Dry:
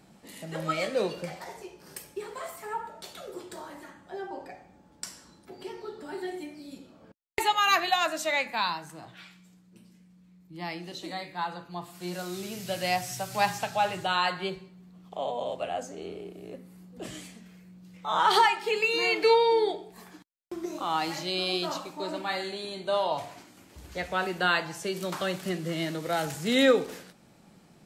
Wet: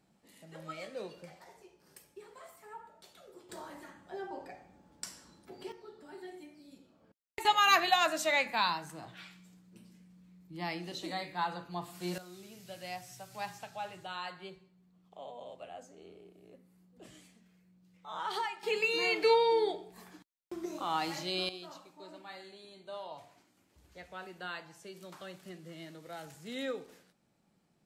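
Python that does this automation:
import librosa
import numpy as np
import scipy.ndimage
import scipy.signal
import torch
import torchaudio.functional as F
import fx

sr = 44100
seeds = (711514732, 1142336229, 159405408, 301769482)

y = fx.gain(x, sr, db=fx.steps((0.0, -14.0), (3.49, -4.0), (5.72, -11.5), (7.45, -1.5), (12.18, -14.5), (18.63, -4.5), (21.49, -16.5)))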